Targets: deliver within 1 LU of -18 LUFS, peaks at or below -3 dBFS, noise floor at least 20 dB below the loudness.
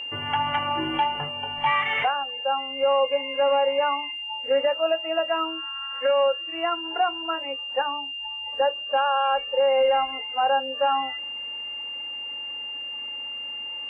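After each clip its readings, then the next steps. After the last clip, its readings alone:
ticks 21/s; steady tone 2800 Hz; tone level -31 dBFS; loudness -25.0 LUFS; peak -13.5 dBFS; loudness target -18.0 LUFS
-> de-click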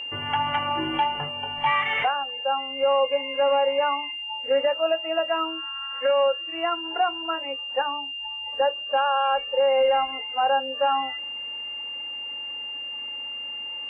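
ticks 0/s; steady tone 2800 Hz; tone level -31 dBFS
-> notch 2800 Hz, Q 30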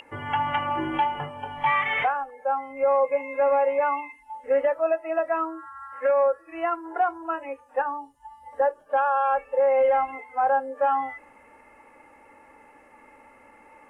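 steady tone none; loudness -25.0 LUFS; peak -14.5 dBFS; loudness target -18.0 LUFS
-> gain +7 dB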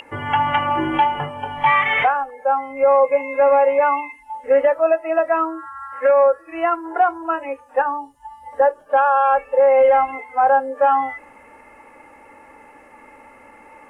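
loudness -18.0 LUFS; peak -7.5 dBFS; noise floor -47 dBFS

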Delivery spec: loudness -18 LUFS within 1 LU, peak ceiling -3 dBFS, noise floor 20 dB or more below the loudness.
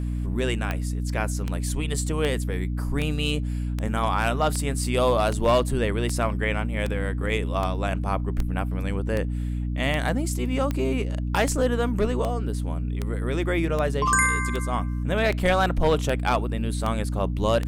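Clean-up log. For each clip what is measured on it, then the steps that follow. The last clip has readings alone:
clicks 23; hum 60 Hz; harmonics up to 300 Hz; hum level -25 dBFS; loudness -25.5 LUFS; peak -8.0 dBFS; loudness target -18.0 LUFS
-> de-click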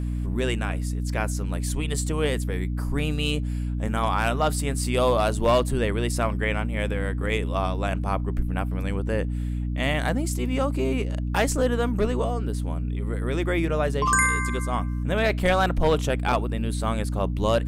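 clicks 0; hum 60 Hz; harmonics up to 300 Hz; hum level -25 dBFS
-> notches 60/120/180/240/300 Hz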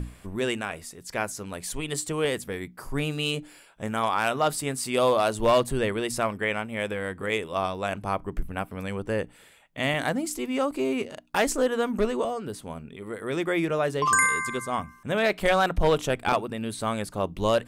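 hum none; loudness -27.0 LUFS; peak -9.0 dBFS; loudness target -18.0 LUFS
-> gain +9 dB; limiter -3 dBFS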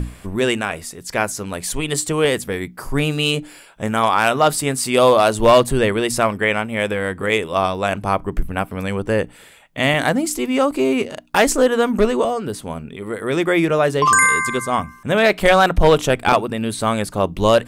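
loudness -18.0 LUFS; peak -3.0 dBFS; noise floor -44 dBFS

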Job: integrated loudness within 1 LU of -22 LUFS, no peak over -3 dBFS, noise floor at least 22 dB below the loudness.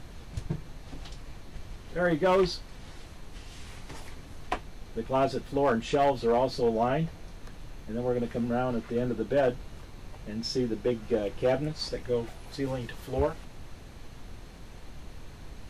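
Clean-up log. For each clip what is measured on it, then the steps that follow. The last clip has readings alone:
clipped 0.5%; flat tops at -18.0 dBFS; noise floor -46 dBFS; noise floor target -52 dBFS; loudness -29.5 LUFS; peak -18.0 dBFS; loudness target -22.0 LUFS
-> clip repair -18 dBFS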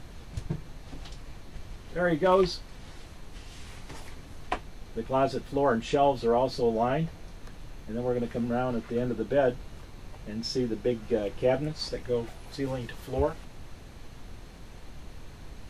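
clipped 0.0%; noise floor -46 dBFS; noise floor target -51 dBFS
-> noise print and reduce 6 dB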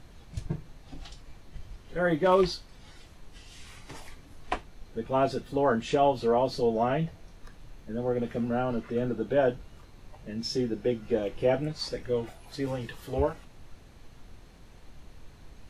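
noise floor -52 dBFS; loudness -29.0 LUFS; peak -11.0 dBFS; loudness target -22.0 LUFS
-> gain +7 dB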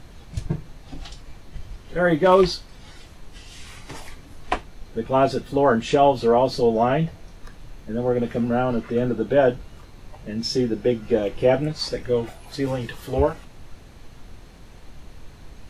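loudness -22.0 LUFS; peak -4.0 dBFS; noise floor -45 dBFS

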